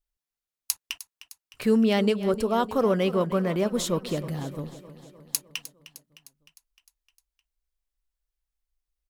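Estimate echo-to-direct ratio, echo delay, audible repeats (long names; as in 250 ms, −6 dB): −13.0 dB, 306 ms, 5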